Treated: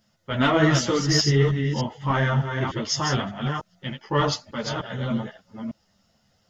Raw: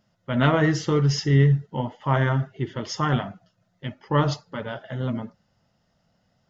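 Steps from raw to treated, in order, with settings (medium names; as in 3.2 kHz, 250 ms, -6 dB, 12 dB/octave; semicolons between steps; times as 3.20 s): chunks repeated in reverse 300 ms, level -5.5 dB; treble shelf 3.1 kHz +9.5 dB; in parallel at -7 dB: saturation -14 dBFS, distortion -15 dB; on the sum: three-phase chorus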